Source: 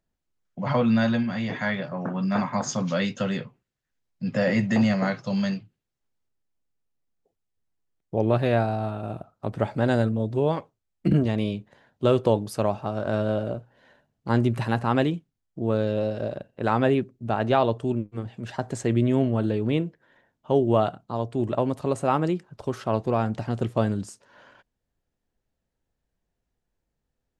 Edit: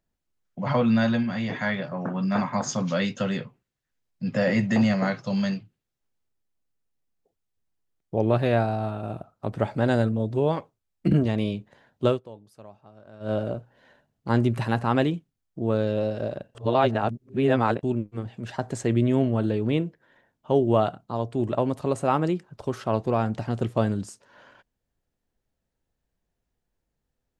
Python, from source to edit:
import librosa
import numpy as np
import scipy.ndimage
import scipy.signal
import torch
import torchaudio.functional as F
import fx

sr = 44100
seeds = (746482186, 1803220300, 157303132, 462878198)

y = fx.edit(x, sr, fx.fade_down_up(start_s=12.07, length_s=1.26, db=-22.0, fade_s=0.13),
    fx.reverse_span(start_s=16.55, length_s=1.28), tone=tone)